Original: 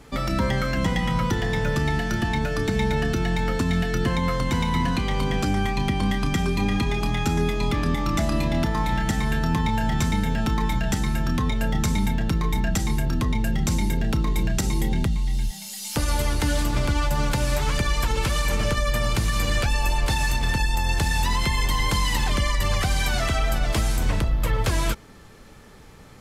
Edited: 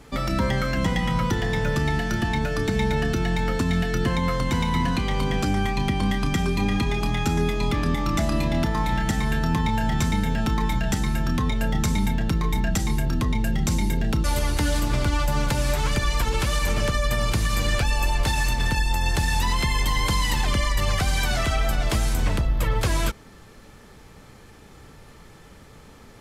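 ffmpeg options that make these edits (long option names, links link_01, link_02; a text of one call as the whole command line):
ffmpeg -i in.wav -filter_complex "[0:a]asplit=2[link_01][link_02];[link_01]atrim=end=14.242[link_03];[link_02]atrim=start=16.068[link_04];[link_03][link_04]acrossfade=duration=0.004:curve1=hsin:curve2=hsin" out.wav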